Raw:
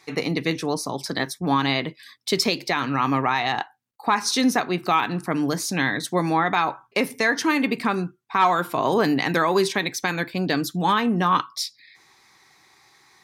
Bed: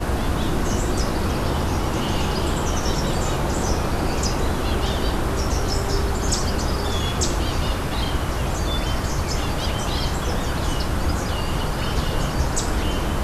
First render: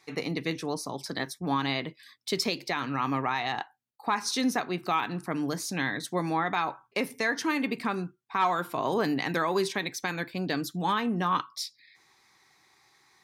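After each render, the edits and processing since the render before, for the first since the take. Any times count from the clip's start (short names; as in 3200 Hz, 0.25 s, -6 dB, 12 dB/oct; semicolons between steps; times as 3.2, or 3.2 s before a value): gain -7 dB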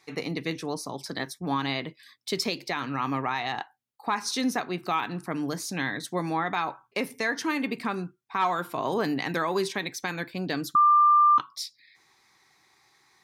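10.75–11.38 bleep 1190 Hz -15 dBFS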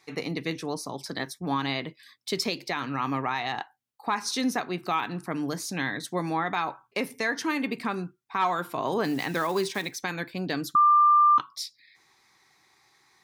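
9.05–9.96 block floating point 5-bit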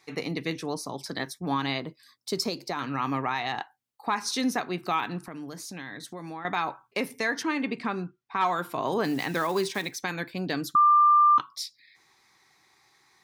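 1.78–2.79 band shelf 2500 Hz -8.5 dB 1.3 oct; 5.18–6.45 compressor 3:1, threshold -38 dBFS; 7.43–8.41 air absorption 79 m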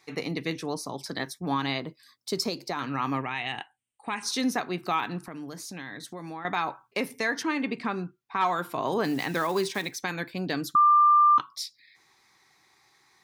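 3.21–4.23 EQ curve 120 Hz 0 dB, 1200 Hz -7 dB, 3000 Hz +6 dB, 5000 Hz -18 dB, 8900 Hz +10 dB, 13000 Hz -28 dB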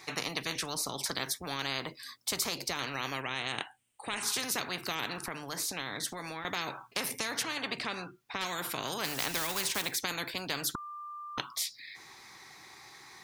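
spectral compressor 4:1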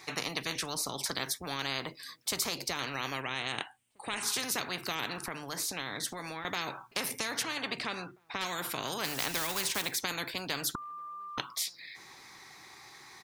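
outdoor echo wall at 280 m, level -29 dB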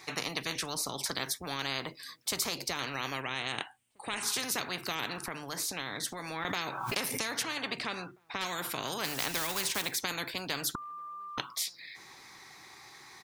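6.18–7.33 backwards sustainer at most 37 dB/s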